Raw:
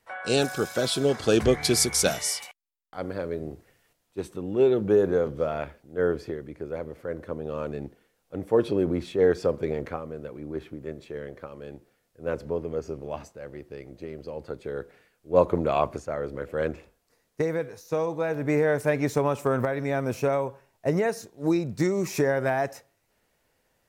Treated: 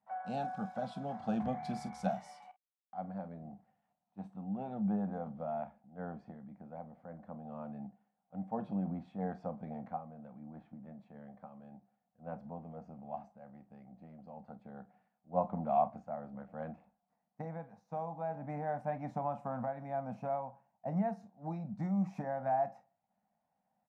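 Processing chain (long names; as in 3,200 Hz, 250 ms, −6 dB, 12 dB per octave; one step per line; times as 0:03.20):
pair of resonant band-passes 390 Hz, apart 1.9 octaves
ambience of single reflections 31 ms −15 dB, 48 ms −16 dB
level +1 dB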